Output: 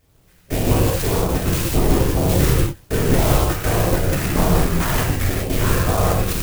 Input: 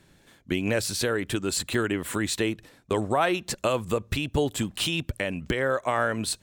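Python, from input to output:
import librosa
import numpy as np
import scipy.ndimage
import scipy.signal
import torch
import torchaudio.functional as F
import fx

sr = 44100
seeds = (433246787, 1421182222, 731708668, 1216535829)

y = fx.rider(x, sr, range_db=10, speed_s=2.0)
y = fx.env_flanger(y, sr, rest_ms=4.3, full_db=-23.0)
y = fx.cheby_harmonics(y, sr, harmonics=(6,), levels_db=(-10,), full_scale_db=-12.5)
y = np.abs(y)
y = fx.filter_lfo_notch(y, sr, shape='sine', hz=1.9, low_hz=640.0, high_hz=2000.0, q=0.88)
y = fx.sample_hold(y, sr, seeds[0], rate_hz=4500.0, jitter_pct=0, at=(3.36, 5.09))
y = fx.whisperise(y, sr, seeds[1])
y = fx.rev_gated(y, sr, seeds[2], gate_ms=220, shape='flat', drr_db=-5.5)
y = fx.clock_jitter(y, sr, seeds[3], jitter_ms=0.068)
y = F.gain(torch.from_numpy(y), 4.0).numpy()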